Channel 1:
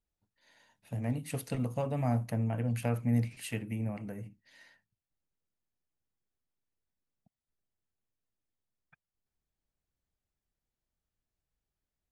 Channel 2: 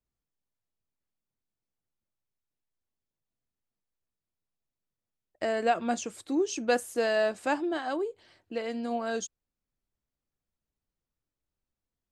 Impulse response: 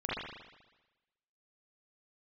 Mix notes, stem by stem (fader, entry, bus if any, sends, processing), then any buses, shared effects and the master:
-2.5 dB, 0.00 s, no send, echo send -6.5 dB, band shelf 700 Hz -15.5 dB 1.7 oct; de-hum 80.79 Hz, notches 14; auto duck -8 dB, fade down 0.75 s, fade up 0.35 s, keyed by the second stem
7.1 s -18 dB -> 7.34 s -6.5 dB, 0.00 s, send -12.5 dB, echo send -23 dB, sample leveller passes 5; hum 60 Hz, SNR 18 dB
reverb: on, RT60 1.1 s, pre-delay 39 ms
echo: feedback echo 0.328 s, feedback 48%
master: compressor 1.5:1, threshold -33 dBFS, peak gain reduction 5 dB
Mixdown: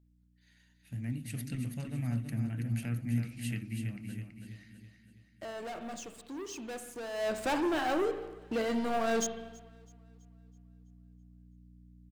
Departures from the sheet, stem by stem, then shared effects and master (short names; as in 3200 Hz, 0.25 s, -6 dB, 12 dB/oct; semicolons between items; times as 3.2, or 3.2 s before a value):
stem 2 -18.0 dB -> -25.5 dB; master: missing compressor 1.5:1, threshold -33 dBFS, peak gain reduction 5 dB